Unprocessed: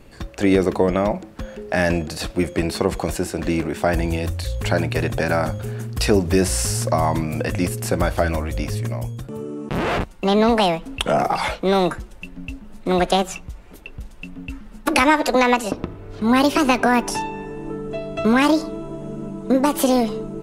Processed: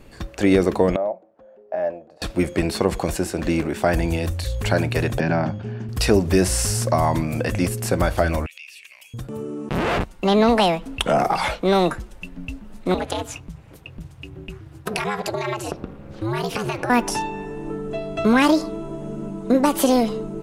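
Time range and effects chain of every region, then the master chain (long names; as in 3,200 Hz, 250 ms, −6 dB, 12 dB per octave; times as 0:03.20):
0:00.96–0:02.22: resonant band-pass 610 Hz, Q 3 + expander for the loud parts, over −34 dBFS
0:05.20–0:05.89: noise gate with hold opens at −19 dBFS, closes at −24 dBFS + loudspeaker in its box 110–4,500 Hz, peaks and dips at 170 Hz +7 dB, 290 Hz +4 dB, 500 Hz −8 dB, 1,300 Hz −7 dB, 2,100 Hz −4 dB, 3,900 Hz −9 dB
0:08.46–0:09.14: high-pass with resonance 2,600 Hz, resonance Q 10 + downward compressor 3 to 1, threshold −43 dBFS
0:12.94–0:16.90: downward compressor 4 to 1, threshold −19 dBFS + ring modulation 110 Hz
whole clip: no processing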